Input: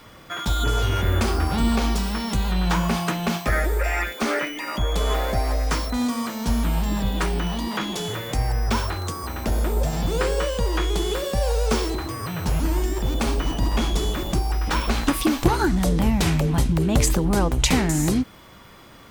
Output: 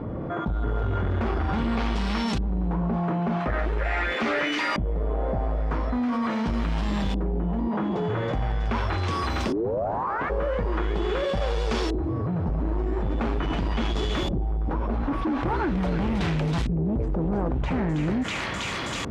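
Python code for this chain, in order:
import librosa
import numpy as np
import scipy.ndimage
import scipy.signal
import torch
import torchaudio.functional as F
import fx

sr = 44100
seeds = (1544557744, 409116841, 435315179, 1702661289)

p1 = 10.0 ** (-22.0 / 20.0) * np.tanh(x / 10.0 ** (-22.0 / 20.0))
p2 = fx.ring_mod(p1, sr, carrier_hz=fx.line((9.47, 290.0), (10.29, 1800.0)), at=(9.47, 10.29), fade=0.02)
p3 = scipy.signal.sosfilt(scipy.signal.butter(2, 45.0, 'highpass', fs=sr, output='sos'), p2)
p4 = p3 + fx.echo_wet_highpass(p3, sr, ms=323, feedback_pct=58, hz=1700.0, wet_db=-5.5, dry=0)
p5 = fx.filter_lfo_lowpass(p4, sr, shape='saw_up', hz=0.42, low_hz=420.0, high_hz=4900.0, q=0.76)
y = fx.env_flatten(p5, sr, amount_pct=70)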